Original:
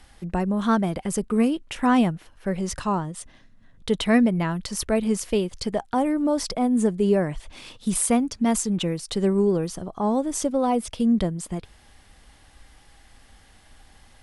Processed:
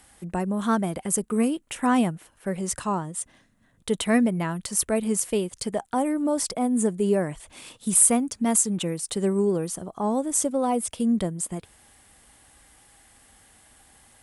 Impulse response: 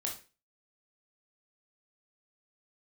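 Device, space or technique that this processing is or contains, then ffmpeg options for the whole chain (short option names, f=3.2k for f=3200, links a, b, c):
budget condenser microphone: -af "highpass=f=120:p=1,highshelf=f=6.5k:t=q:w=1.5:g=7.5,volume=-1.5dB"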